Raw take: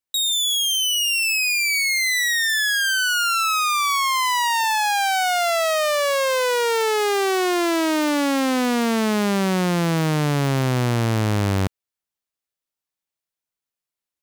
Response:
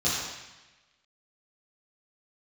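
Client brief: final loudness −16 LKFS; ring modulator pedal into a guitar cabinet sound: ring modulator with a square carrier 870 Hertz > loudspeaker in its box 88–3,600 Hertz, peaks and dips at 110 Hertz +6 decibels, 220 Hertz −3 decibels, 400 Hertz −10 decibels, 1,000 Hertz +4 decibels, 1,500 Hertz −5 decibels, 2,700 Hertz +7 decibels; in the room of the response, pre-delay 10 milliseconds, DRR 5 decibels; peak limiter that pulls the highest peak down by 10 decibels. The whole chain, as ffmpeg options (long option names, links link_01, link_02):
-filter_complex "[0:a]alimiter=level_in=1.5dB:limit=-24dB:level=0:latency=1,volume=-1.5dB,asplit=2[link_01][link_02];[1:a]atrim=start_sample=2205,adelay=10[link_03];[link_02][link_03]afir=irnorm=-1:irlink=0,volume=-16.5dB[link_04];[link_01][link_04]amix=inputs=2:normalize=0,aeval=exprs='val(0)*sgn(sin(2*PI*870*n/s))':channel_layout=same,highpass=88,equalizer=frequency=110:width_type=q:width=4:gain=6,equalizer=frequency=220:width_type=q:width=4:gain=-3,equalizer=frequency=400:width_type=q:width=4:gain=-10,equalizer=frequency=1000:width_type=q:width=4:gain=4,equalizer=frequency=1500:width_type=q:width=4:gain=-5,equalizer=frequency=2700:width_type=q:width=4:gain=7,lowpass=frequency=3600:width=0.5412,lowpass=frequency=3600:width=1.3066,volume=11dB"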